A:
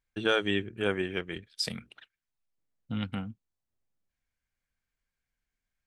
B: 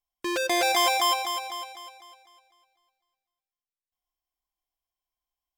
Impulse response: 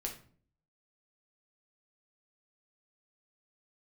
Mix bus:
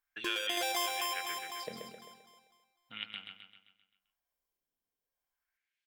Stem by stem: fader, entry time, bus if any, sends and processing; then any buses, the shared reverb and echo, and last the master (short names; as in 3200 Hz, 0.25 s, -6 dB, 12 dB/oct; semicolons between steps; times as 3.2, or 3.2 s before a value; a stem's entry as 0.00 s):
+3.0 dB, 0.00 s, no send, echo send -6.5 dB, high shelf 2300 Hz +7 dB; LFO band-pass sine 0.37 Hz 360–3800 Hz
-2.5 dB, 0.00 s, no send, echo send -16.5 dB, high shelf 7200 Hz +7.5 dB; random-step tremolo, depth 55%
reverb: off
echo: feedback echo 0.131 s, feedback 49%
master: compressor 2:1, threshold -37 dBFS, peak gain reduction 10 dB